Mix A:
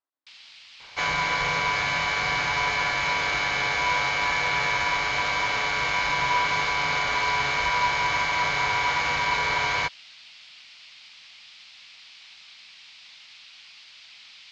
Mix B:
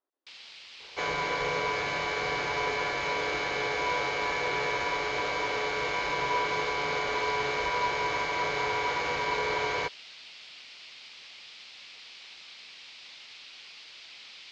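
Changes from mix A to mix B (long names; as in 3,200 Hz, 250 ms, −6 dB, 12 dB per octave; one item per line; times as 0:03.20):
second sound −7.5 dB
master: add parametric band 420 Hz +15 dB 0.98 octaves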